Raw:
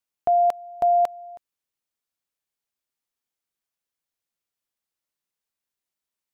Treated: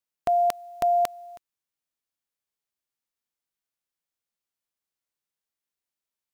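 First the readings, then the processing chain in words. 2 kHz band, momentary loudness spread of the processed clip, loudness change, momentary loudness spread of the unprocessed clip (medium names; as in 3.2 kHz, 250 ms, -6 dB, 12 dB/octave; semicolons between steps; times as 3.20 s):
no reading, 6 LU, -3.0 dB, 6 LU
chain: formants flattened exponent 0.6; trim -3 dB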